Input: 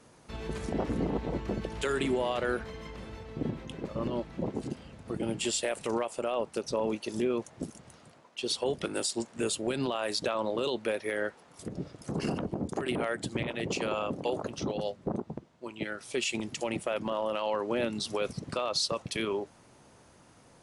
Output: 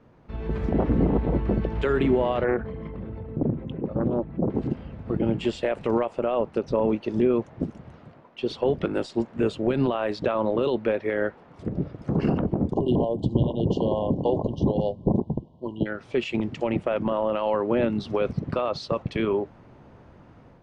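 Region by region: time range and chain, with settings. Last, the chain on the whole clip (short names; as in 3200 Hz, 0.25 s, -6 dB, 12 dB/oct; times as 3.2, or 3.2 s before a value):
2.44–4.5 formant sharpening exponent 1.5 + HPF 82 Hz + Doppler distortion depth 0.49 ms
12.73–15.86 brick-wall FIR band-stop 1100–2800 Hz + low shelf 180 Hz +5.5 dB
whole clip: LPF 2800 Hz 12 dB/oct; tilt -2 dB/oct; AGC gain up to 6 dB; gain -1 dB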